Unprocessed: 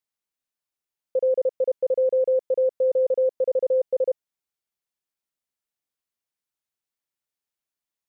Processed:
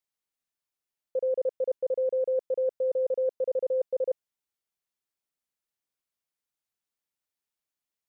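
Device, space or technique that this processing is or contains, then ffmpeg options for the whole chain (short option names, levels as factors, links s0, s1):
compression on the reversed sound: -af "areverse,acompressor=threshold=0.0708:ratio=6,areverse,volume=0.841"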